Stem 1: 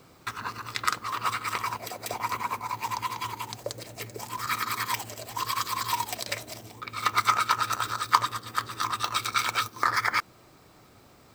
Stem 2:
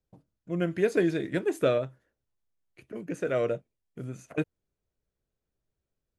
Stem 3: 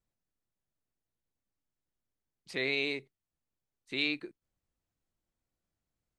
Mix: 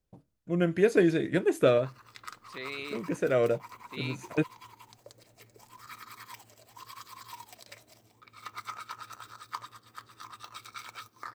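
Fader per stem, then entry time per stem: −17.5, +2.0, −7.5 decibels; 1.40, 0.00, 0.00 seconds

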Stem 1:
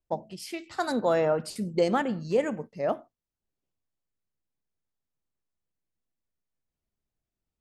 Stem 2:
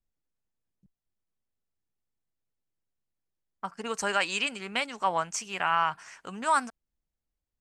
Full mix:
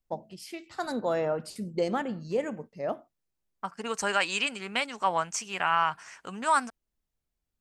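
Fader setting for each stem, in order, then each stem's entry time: −4.0, +0.5 decibels; 0.00, 0.00 seconds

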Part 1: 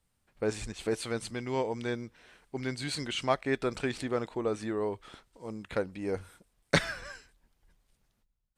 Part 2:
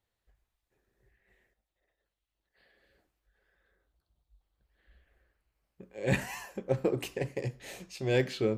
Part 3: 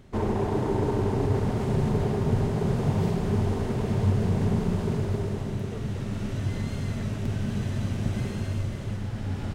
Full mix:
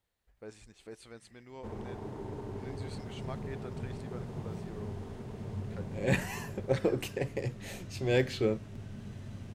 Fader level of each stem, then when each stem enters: −16.5, 0.0, −15.5 decibels; 0.00, 0.00, 1.50 seconds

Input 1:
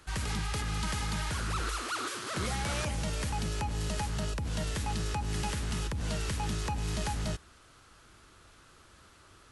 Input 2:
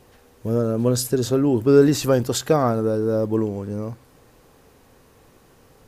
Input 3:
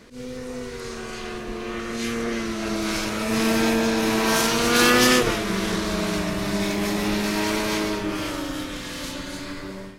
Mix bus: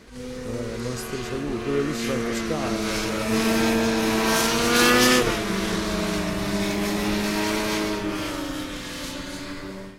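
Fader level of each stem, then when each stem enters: −12.5, −11.5, −0.5 decibels; 0.00, 0.00, 0.00 seconds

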